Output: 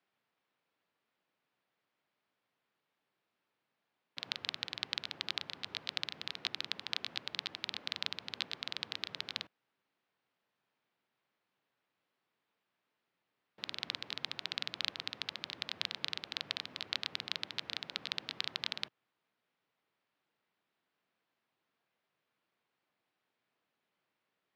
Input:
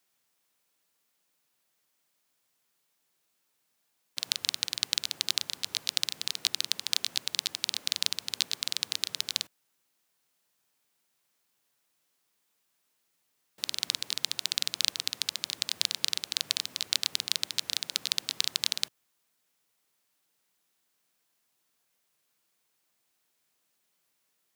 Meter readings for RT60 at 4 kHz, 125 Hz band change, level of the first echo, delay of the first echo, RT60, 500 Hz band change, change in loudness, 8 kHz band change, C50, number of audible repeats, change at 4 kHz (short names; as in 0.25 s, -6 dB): none, n/a, none, none, none, 0.0 dB, -9.0 dB, -22.5 dB, none, none, -9.0 dB